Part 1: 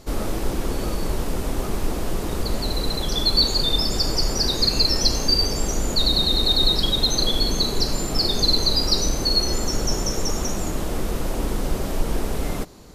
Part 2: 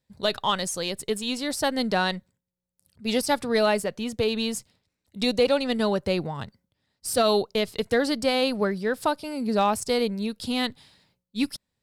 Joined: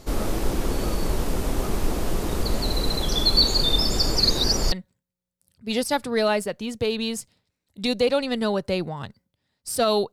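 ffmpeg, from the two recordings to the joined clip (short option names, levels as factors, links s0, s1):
-filter_complex "[0:a]apad=whole_dur=10.12,atrim=end=10.12,asplit=2[s0][s1];[s0]atrim=end=4.202[s2];[s1]atrim=start=4.198:end=4.722,asetpts=PTS-STARTPTS,areverse[s3];[1:a]atrim=start=2.098:end=7.5[s4];[s2][s3]acrossfade=d=0.004:c1=hsin:c2=hsin[s5];[s5][s4]acrossfade=d=0.004:c1=hsin:c2=hsin"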